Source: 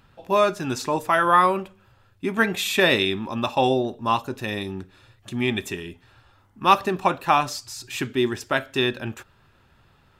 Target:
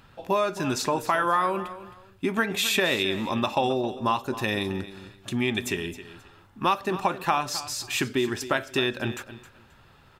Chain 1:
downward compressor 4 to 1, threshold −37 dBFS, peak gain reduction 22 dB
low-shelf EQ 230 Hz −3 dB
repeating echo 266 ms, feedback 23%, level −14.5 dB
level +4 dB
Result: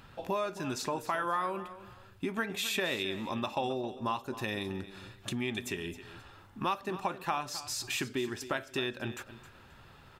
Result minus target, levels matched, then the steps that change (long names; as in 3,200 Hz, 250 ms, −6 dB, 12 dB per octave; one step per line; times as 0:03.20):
downward compressor: peak gain reduction +8.5 dB
change: downward compressor 4 to 1, threshold −25.5 dBFS, peak gain reduction 13.5 dB